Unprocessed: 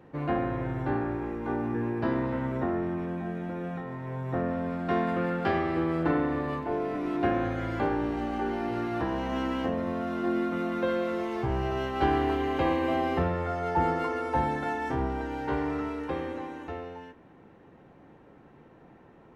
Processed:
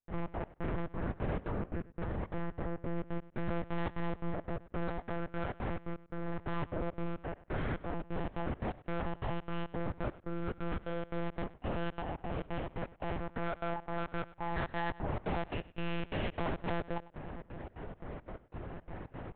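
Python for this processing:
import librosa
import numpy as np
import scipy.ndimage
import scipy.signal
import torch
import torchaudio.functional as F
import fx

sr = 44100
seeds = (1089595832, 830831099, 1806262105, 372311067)

y = fx.sample_sort(x, sr, block=16, at=(15.44, 16.3))
y = fx.over_compress(y, sr, threshold_db=-36.0, ratio=-1.0)
y = 10.0 ** (-36.5 / 20.0) * np.tanh(y / 10.0 ** (-36.5 / 20.0))
y = fx.step_gate(y, sr, bpm=174, pattern='.xx.x..xxx.xx.xx', floor_db=-60.0, edge_ms=4.5)
y = fx.echo_feedback(y, sr, ms=104, feedback_pct=19, wet_db=-18.5)
y = fx.lpc_monotone(y, sr, seeds[0], pitch_hz=170.0, order=8)
y = y * librosa.db_to_amplitude(6.0)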